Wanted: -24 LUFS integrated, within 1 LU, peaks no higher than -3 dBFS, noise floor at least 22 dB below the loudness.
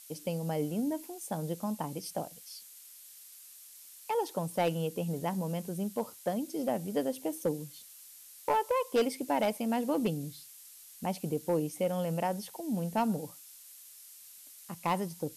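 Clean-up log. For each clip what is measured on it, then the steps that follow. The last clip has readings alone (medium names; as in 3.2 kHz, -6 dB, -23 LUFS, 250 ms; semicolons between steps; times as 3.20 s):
clipped samples 0.4%; clipping level -21.5 dBFS; noise floor -53 dBFS; noise floor target -56 dBFS; loudness -33.5 LUFS; peak level -21.5 dBFS; loudness target -24.0 LUFS
-> clip repair -21.5 dBFS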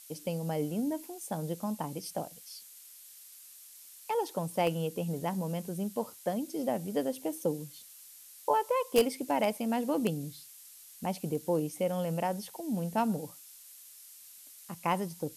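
clipped samples 0.0%; noise floor -53 dBFS; noise floor target -55 dBFS
-> noise print and reduce 6 dB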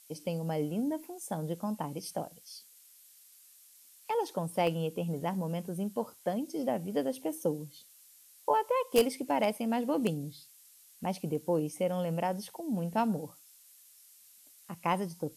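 noise floor -59 dBFS; loudness -33.0 LUFS; peak level -12.5 dBFS; loudness target -24.0 LUFS
-> trim +9 dB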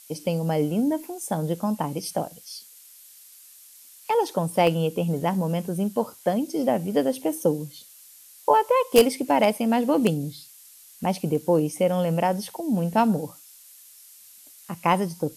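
loudness -24.0 LUFS; peak level -3.5 dBFS; noise floor -50 dBFS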